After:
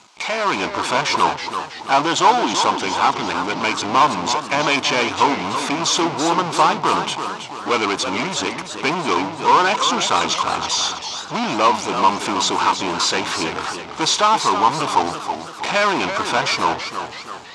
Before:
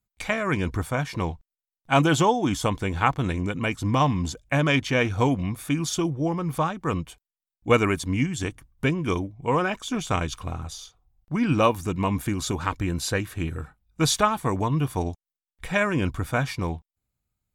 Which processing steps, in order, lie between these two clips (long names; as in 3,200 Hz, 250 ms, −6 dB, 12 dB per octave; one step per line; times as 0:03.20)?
power curve on the samples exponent 0.35
automatic gain control
loudspeaker in its box 420–6,400 Hz, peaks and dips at 520 Hz −6 dB, 950 Hz +8 dB, 1,800 Hz −7 dB
feedback echo with a swinging delay time 329 ms, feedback 50%, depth 153 cents, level −8.5 dB
level −7 dB